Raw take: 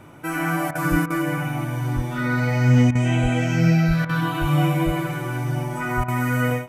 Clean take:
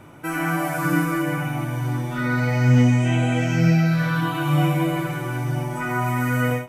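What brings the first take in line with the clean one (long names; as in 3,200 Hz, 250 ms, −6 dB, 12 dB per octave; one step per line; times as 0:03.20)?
high-pass at the plosives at 0:00.90/0:01.95/0:03.22/0:03.87/0:04.40/0:04.85/0:05.96
repair the gap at 0:00.71/0:01.06/0:02.91/0:04.05/0:06.04, 41 ms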